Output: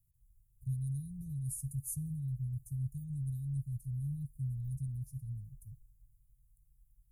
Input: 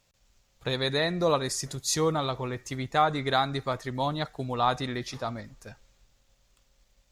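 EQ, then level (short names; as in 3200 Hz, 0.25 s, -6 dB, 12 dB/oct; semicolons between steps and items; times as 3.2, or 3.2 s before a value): Chebyshev band-stop 140–9700 Hz, order 4; +1.0 dB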